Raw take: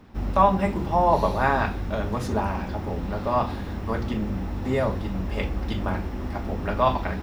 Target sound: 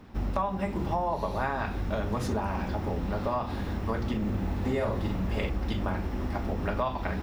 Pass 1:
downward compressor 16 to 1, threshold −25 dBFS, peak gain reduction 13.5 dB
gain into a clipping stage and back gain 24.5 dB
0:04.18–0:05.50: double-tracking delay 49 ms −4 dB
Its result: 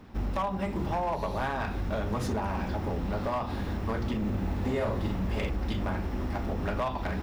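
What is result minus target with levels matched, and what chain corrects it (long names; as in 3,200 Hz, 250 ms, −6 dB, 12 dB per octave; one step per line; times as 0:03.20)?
gain into a clipping stage and back: distortion +34 dB
downward compressor 16 to 1, threshold −25 dBFS, peak gain reduction 13.5 dB
gain into a clipping stage and back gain 15 dB
0:04.18–0:05.50: double-tracking delay 49 ms −4 dB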